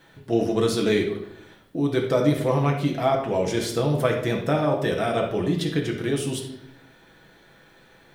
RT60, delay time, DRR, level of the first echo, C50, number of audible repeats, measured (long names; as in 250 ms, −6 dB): 0.70 s, no echo audible, 0.0 dB, no echo audible, 5.5 dB, no echo audible